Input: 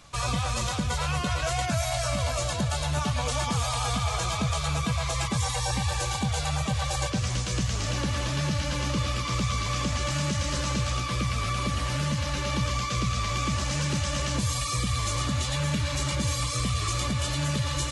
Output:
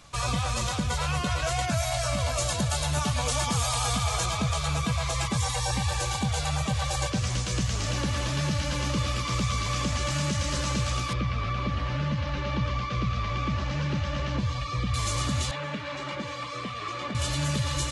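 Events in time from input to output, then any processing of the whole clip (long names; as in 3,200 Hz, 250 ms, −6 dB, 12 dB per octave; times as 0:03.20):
0:02.38–0:04.26: high-shelf EQ 6,400 Hz +7 dB
0:11.13–0:14.94: high-frequency loss of the air 230 metres
0:15.51–0:17.15: band-pass filter 260–2,600 Hz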